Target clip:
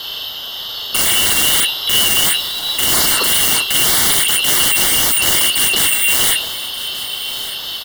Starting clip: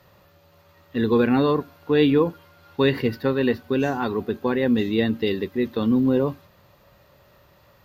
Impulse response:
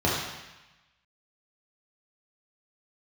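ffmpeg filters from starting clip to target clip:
-filter_complex "[0:a]afftfilt=real='real(if(lt(b,272),68*(eq(floor(b/68),0)*2+eq(floor(b/68),1)*3+eq(floor(b/68),2)*0+eq(floor(b/68),3)*1)+mod(b,68),b),0)':imag='imag(if(lt(b,272),68*(eq(floor(b/68),0)*2+eq(floor(b/68),1)*3+eq(floor(b/68),2)*0+eq(floor(b/68),3)*1)+mod(b,68),b),0)':win_size=2048:overlap=0.75,highpass=720,adynamicequalizer=threshold=0.00562:dfrequency=2200:dqfactor=6.7:tfrequency=2200:tqfactor=6.7:attack=5:release=100:ratio=0.375:range=2.5:mode=cutabove:tftype=bell,acontrast=24,asoftclip=type=hard:threshold=-20dB,asplit=2[link_01][link_02];[link_02]adelay=39,volume=-3.5dB[link_03];[link_01][link_03]amix=inputs=2:normalize=0,aeval=exprs='0.168*sin(PI/2*6.31*val(0)/0.168)':channel_layout=same,afreqshift=-420,asuperstop=centerf=2500:order=8:qfactor=5.1,aecho=1:1:1184|2368|3552:0.158|0.0618|0.0241,volume=5.5dB"

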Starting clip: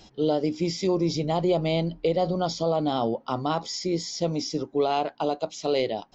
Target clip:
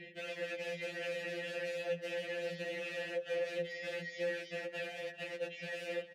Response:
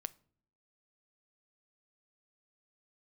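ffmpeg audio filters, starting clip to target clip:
-filter_complex "[0:a]asplit=2[link_01][link_02];[link_02]adelay=20,volume=-3dB[link_03];[link_01][link_03]amix=inputs=2:normalize=0,alimiter=limit=-17.5dB:level=0:latency=1:release=11,firequalizer=gain_entry='entry(180,0);entry(1100,-28);entry(1800,6);entry(5300,-18)':delay=0.05:min_phase=1,aeval=exprs='(mod(50.1*val(0)+1,2)-1)/50.1':channel_layout=same,acompressor=threshold=-47dB:ratio=6,asplit=3[link_04][link_05][link_06];[link_04]bandpass=frequency=530:width_type=q:width=8,volume=0dB[link_07];[link_05]bandpass=frequency=1840:width_type=q:width=8,volume=-6dB[link_08];[link_06]bandpass=frequency=2480:width_type=q:width=8,volume=-9dB[link_09];[link_07][link_08][link_09]amix=inputs=3:normalize=0,lowshelf=frequency=120:width_type=q:width=3:gain=-11.5,asplit=2[link_10][link_11];[link_11]adelay=396,lowpass=frequency=3900:poles=1,volume=-15dB,asplit=2[link_12][link_13];[link_13]adelay=396,lowpass=frequency=3900:poles=1,volume=0.48,asplit=2[link_14][link_15];[link_15]adelay=396,lowpass=frequency=3900:poles=1,volume=0.48,asplit=2[link_16][link_17];[link_17]adelay=396,lowpass=frequency=3900:poles=1,volume=0.48[link_18];[link_10][link_12][link_14][link_16][link_18]amix=inputs=5:normalize=0,asplit=2[link_19][link_20];[1:a]atrim=start_sample=2205,asetrate=27342,aresample=44100[link_21];[link_20][link_21]afir=irnorm=-1:irlink=0,volume=2.5dB[link_22];[link_19][link_22]amix=inputs=2:normalize=0,afftfilt=real='re*2.83*eq(mod(b,8),0)':imag='im*2.83*eq(mod(b,8),0)':win_size=2048:overlap=0.75,volume=14.5dB"

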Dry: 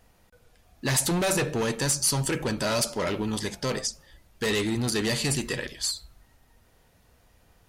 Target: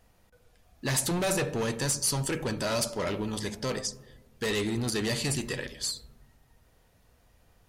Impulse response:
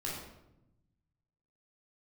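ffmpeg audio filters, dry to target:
-filter_complex "[0:a]asplit=2[link_01][link_02];[link_02]lowpass=1300[link_03];[1:a]atrim=start_sample=2205,asetrate=30870,aresample=44100[link_04];[link_03][link_04]afir=irnorm=-1:irlink=0,volume=-18.5dB[link_05];[link_01][link_05]amix=inputs=2:normalize=0,volume=-3.5dB"

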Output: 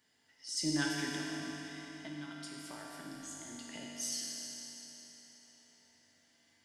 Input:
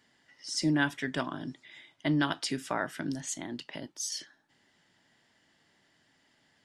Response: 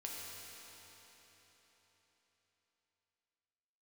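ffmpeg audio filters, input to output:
-filter_complex "[0:a]highshelf=frequency=6400:gain=11,asettb=1/sr,asplit=3[link_01][link_02][link_03];[link_01]atrim=end=1.164[link_04];[link_02]atrim=start=1.16:end=3.7,asetpts=PTS-STARTPTS,afade=type=in:duration=0.004:curve=qsin,afade=type=out:start_time=2.536:duration=0.004:curve=qsin,acompressor=threshold=-38dB:ratio=6[link_05];[link_03]atrim=start=3.696[link_06];[link_04][link_05]acrossfade=duration=0.004:curve1=hsin:curve2=qsin[link_07];[link_07][link_06]acrossfade=duration=0.004:curve1=qsin:curve2=hsin[link_08];[1:a]atrim=start_sample=2205[link_09];[link_08][link_09]afir=irnorm=-1:irlink=0,volume=-4dB"

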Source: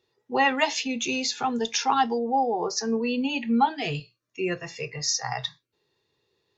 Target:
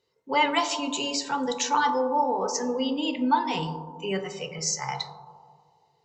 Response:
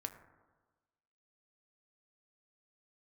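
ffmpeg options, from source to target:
-filter_complex "[1:a]atrim=start_sample=2205,asetrate=26901,aresample=44100[link_01];[0:a][link_01]afir=irnorm=-1:irlink=0,asetrate=48000,aresample=44100,volume=-1dB"

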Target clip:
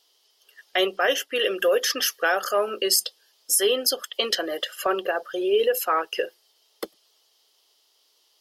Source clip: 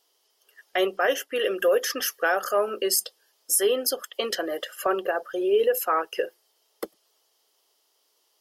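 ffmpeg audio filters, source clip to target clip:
ffmpeg -i in.wav -af "equalizer=frequency=3800:width=1:gain=8.5" out.wav

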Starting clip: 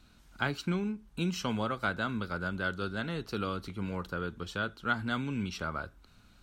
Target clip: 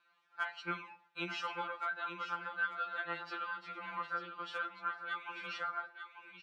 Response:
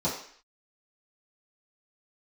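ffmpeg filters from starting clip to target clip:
-filter_complex "[0:a]lowpass=1900,agate=range=-9dB:threshold=-48dB:ratio=16:detection=peak,highpass=1100,alimiter=level_in=2.5dB:limit=-24dB:level=0:latency=1:release=330,volume=-2.5dB,acompressor=threshold=-46dB:ratio=3,asoftclip=type=hard:threshold=-34.5dB,aecho=1:1:891:0.355,asplit=2[link_01][link_02];[1:a]atrim=start_sample=2205,adelay=85[link_03];[link_02][link_03]afir=irnorm=-1:irlink=0,volume=-32dB[link_04];[link_01][link_04]amix=inputs=2:normalize=0,afftfilt=real='re*2.83*eq(mod(b,8),0)':imag='im*2.83*eq(mod(b,8),0)':win_size=2048:overlap=0.75,volume=11.5dB"

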